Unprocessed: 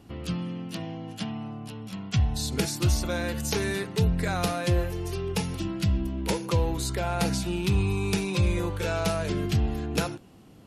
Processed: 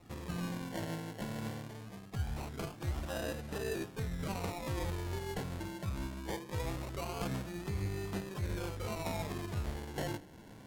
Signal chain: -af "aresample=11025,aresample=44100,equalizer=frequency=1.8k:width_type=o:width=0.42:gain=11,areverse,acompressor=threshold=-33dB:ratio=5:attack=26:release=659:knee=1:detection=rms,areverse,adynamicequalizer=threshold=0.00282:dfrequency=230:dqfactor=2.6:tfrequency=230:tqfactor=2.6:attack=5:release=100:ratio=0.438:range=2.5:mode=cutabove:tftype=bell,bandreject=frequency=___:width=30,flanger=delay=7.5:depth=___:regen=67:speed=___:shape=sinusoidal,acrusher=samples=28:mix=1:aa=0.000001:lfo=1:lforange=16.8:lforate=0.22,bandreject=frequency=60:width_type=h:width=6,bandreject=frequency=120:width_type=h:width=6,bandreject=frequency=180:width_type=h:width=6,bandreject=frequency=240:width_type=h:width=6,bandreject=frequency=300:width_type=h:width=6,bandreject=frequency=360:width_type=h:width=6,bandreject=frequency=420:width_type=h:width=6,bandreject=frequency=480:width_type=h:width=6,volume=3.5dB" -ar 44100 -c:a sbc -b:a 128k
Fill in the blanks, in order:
2.6k, 5.3, 1.5